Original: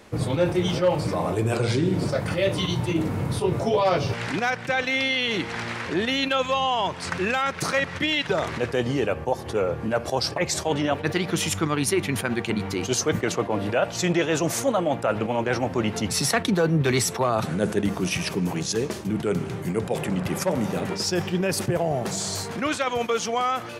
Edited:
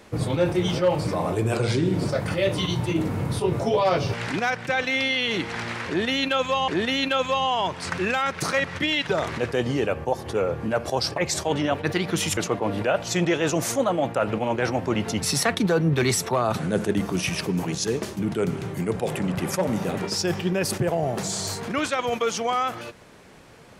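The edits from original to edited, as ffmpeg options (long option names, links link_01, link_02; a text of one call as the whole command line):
ffmpeg -i in.wav -filter_complex "[0:a]asplit=3[link_01][link_02][link_03];[link_01]atrim=end=6.682[link_04];[link_02]atrim=start=5.878:end=11.572[link_05];[link_03]atrim=start=13.248[link_06];[link_04][link_05]acrossfade=duration=0.004:curve1=hsin:curve2=hsin[link_07];[link_07][link_06]acrossfade=duration=0.004:curve1=hsin:curve2=hsin" out.wav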